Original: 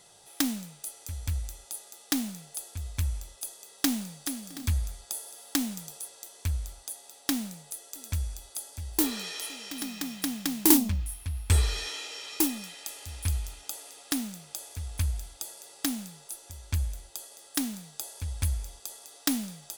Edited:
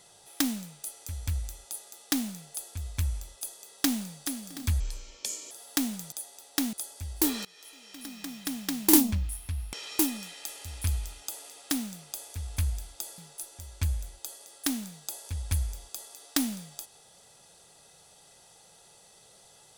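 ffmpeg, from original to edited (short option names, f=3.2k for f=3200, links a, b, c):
-filter_complex "[0:a]asplit=8[a][b][c][d][e][f][g][h];[a]atrim=end=4.804[i];[b]atrim=start=4.8:end=5.29,asetpts=PTS-STARTPTS,asetrate=30429,aresample=44100,atrim=end_sample=31317,asetpts=PTS-STARTPTS[j];[c]atrim=start=5.286:end=5.902[k];[d]atrim=start=6.828:end=7.442[l];[e]atrim=start=8.498:end=9.22,asetpts=PTS-STARTPTS,afade=t=out:st=0.718:d=0.004:c=hsin:silence=0.0841395[m];[f]atrim=start=9.22:end=11.502,asetpts=PTS-STARTPTS,afade=t=in:d=1.47:silence=0.0841395[n];[g]atrim=start=12.138:end=15.592[o];[h]atrim=start=16.088[p];[i][j]acrossfade=d=0.004:c1=hsin:c2=hsin[q];[q][k]acrossfade=d=0.004:c1=hsin:c2=hsin[r];[r][l]acrossfade=d=0.004:c1=hsin:c2=hsin[s];[m][n]concat=n=2:v=0:a=1[t];[s][t]acrossfade=d=0.004:c1=hsin:c2=hsin[u];[u][o]acrossfade=d=0.004:c1=hsin:c2=hsin[v];[v][p]acrossfade=d=0.004:c1=hsin:c2=hsin"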